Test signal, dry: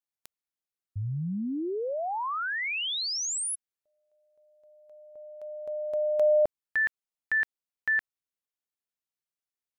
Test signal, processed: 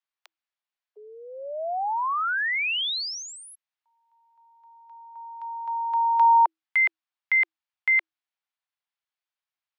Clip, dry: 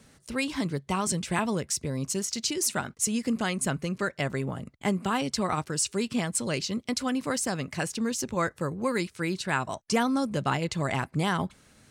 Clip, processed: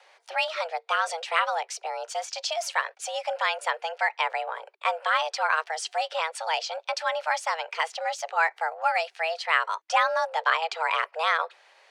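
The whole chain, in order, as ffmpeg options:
-filter_complex "[0:a]acrossover=split=310 4400:gain=0.0891 1 0.0794[a][b][c];[a][b][c]amix=inputs=3:normalize=0,afreqshift=320,volume=5.5dB"

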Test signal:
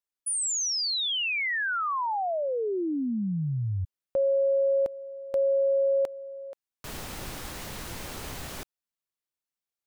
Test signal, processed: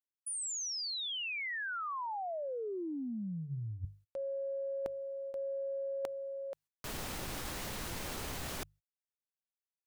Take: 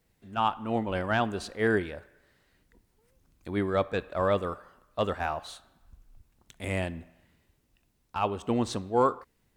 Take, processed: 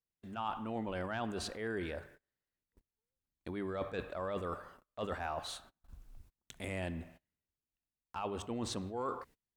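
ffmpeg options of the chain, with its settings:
-af "areverse,acompressor=threshold=-41dB:ratio=6:attack=25:release=58:knee=6:detection=peak,areverse,bandreject=f=50:t=h:w=6,bandreject=f=100:t=h:w=6,bandreject=f=150:t=h:w=6,agate=range=-29dB:threshold=-57dB:ratio=16:release=144:detection=rms,volume=1dB"

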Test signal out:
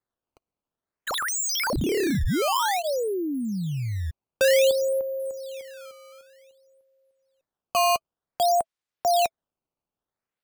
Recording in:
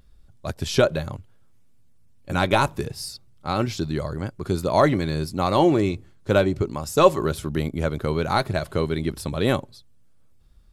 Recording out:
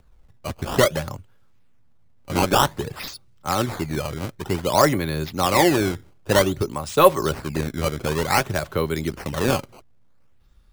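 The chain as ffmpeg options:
-filter_complex "[0:a]bandreject=f=660:w=12,acrossover=split=290|500|4300[a][b][c][d];[c]acontrast=20[e];[a][b][e][d]amix=inputs=4:normalize=0,acrusher=samples=14:mix=1:aa=0.000001:lfo=1:lforange=22.4:lforate=0.54,volume=-1dB"

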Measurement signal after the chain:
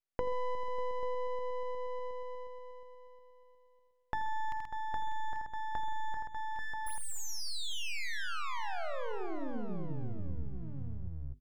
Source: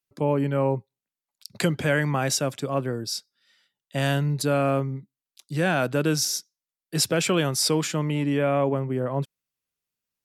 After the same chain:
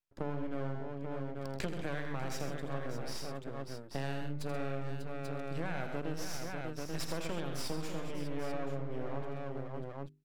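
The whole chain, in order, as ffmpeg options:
-filter_complex "[0:a]aeval=exprs='max(val(0),0)':c=same,highshelf=f=5.9k:g=-10.5,asplit=2[a][b];[b]aecho=0:1:51|82|131|594|838:0.119|0.422|0.355|0.282|0.299[c];[a][c]amix=inputs=2:normalize=0,acompressor=threshold=-31dB:ratio=4,bandreject=f=50:t=h:w=6,bandreject=f=100:t=h:w=6,bandreject=f=150:t=h:w=6,bandreject=f=200:t=h:w=6,bandreject=f=250:t=h:w=6,bandreject=f=300:t=h:w=6,bandreject=f=350:t=h:w=6,bandreject=f=400:t=h:w=6,volume=-2dB"

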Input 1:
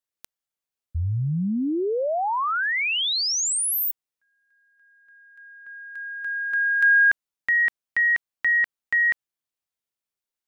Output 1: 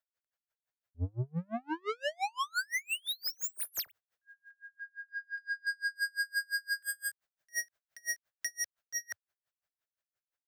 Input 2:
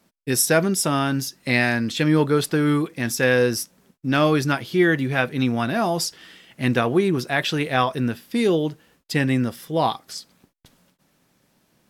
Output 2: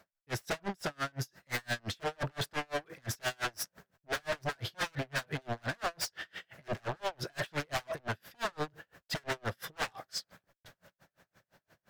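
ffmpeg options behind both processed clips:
-af "dynaudnorm=f=140:g=21:m=8dB,aeval=exprs='0.126*(abs(mod(val(0)/0.126+3,4)-2)-1)':c=same,alimiter=limit=-21.5dB:level=0:latency=1:release=10,equalizer=f=100:t=o:w=0.67:g=7,equalizer=f=250:t=o:w=0.67:g=-8,equalizer=f=630:t=o:w=0.67:g=8,equalizer=f=1.6k:t=o:w=0.67:g=10,equalizer=f=10k:t=o:w=0.67:g=-7,asoftclip=type=tanh:threshold=-27.5dB,aeval=exprs='val(0)*pow(10,-37*(0.5-0.5*cos(2*PI*5.8*n/s))/20)':c=same"

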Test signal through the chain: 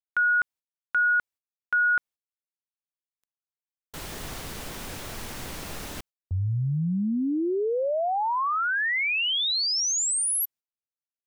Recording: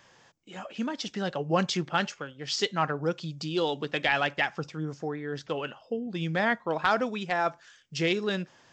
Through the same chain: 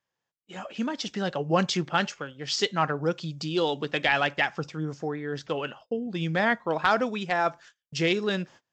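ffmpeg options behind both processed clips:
-af "agate=range=-29dB:threshold=-49dB:ratio=16:detection=peak,volume=2dB"

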